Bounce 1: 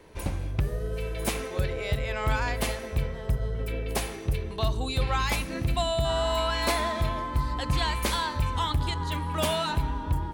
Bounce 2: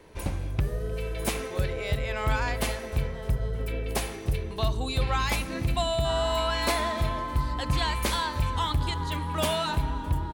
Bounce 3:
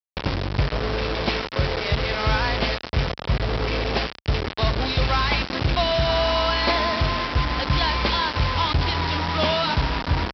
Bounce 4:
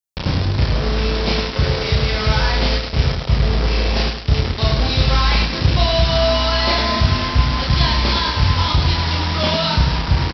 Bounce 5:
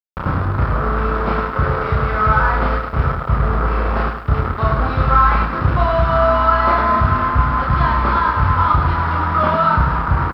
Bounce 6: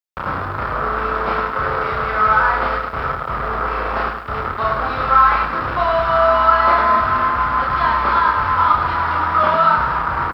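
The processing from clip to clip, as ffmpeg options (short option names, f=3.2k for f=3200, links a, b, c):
-af "aecho=1:1:306|612|918|1224:0.0891|0.0472|0.025|0.0133"
-af "aresample=11025,acrusher=bits=4:mix=0:aa=0.000001,aresample=44100,highpass=43,volume=5dB"
-filter_complex "[0:a]bass=f=250:g=7,treble=f=4k:g=9,asplit=2[a][b];[b]aecho=0:1:32.07|105|209.9:0.891|0.631|0.251[c];[a][c]amix=inputs=2:normalize=0,volume=-2dB"
-af "lowpass=f=1.3k:t=q:w=5.6,acrusher=bits=9:mix=0:aa=0.000001,volume=-1dB"
-filter_complex "[0:a]lowshelf=f=340:g=-9.5,acrossover=split=330|930[a][b][c];[a]asoftclip=type=tanh:threshold=-29.5dB[d];[d][b][c]amix=inputs=3:normalize=0,volume=2.5dB"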